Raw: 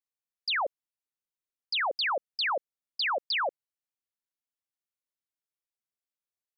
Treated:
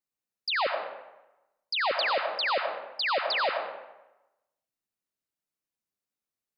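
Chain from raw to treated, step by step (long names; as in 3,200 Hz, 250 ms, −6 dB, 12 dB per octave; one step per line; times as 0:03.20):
parametric band 200 Hz +7.5 dB 2.4 octaves
notch filter 3,300 Hz, Q 17
comb and all-pass reverb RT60 0.99 s, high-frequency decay 0.7×, pre-delay 50 ms, DRR 3.5 dB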